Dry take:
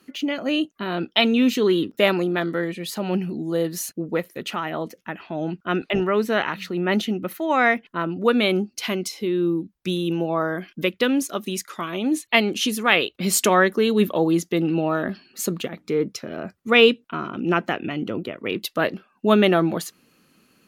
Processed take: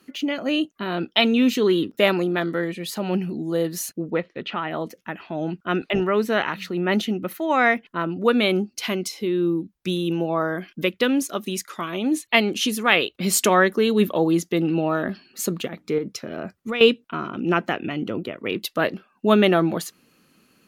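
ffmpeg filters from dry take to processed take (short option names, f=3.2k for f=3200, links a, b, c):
-filter_complex "[0:a]asettb=1/sr,asplit=3[a][b][c];[a]atrim=end=4.104[d];[b]atrim=start=4.1:end=4.71,asetpts=PTS-STARTPTS,afade=t=in:d=0.004:c=qsin,afade=t=out:st=0.606:d=0.004:c=qsin,lowpass=f=3.9k:w=0.5412,lowpass=f=3.9k:w=1.3066[e];[c]atrim=start=4.706[f];[d][e]acrossfade=d=0.004:c1=hsin:c2=qsin[g];[g][f]acrossfade=d=0.004:c1=qsin:c2=hsin,asettb=1/sr,asplit=3[h][i][j];[h]atrim=end=15.984[k];[i]atrim=start=15.98:end=16.81,asetpts=PTS-STARTPTS,afade=t=in:d=0.004:c=qsin,afade=t=out:st=0.826:d=0.004:c=qsin,acompressor=threshold=-23dB:ratio=6:attack=3.2:release=140:knee=1:detection=peak[l];[j]atrim=start=16.806[m];[k][l]acrossfade=d=0.004:c1=hsin:c2=qsin[n];[n][m]acrossfade=d=0.004:c1=qsin:c2=hsin"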